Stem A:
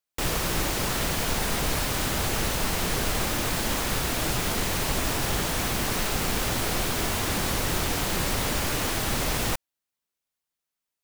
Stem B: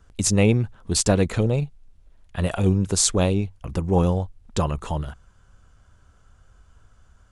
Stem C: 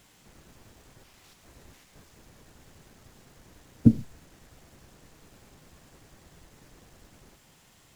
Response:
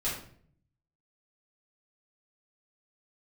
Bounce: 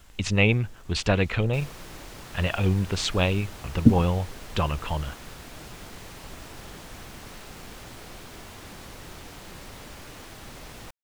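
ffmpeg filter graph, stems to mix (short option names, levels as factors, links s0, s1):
-filter_complex "[0:a]highshelf=f=8800:g=-6.5,adelay=1350,volume=0.168[s0];[1:a]lowpass=f=2800:t=q:w=2,equalizer=f=280:t=o:w=2.8:g=-7,volume=1.12[s1];[2:a]volume=1.12[s2];[s0][s1][s2]amix=inputs=3:normalize=0"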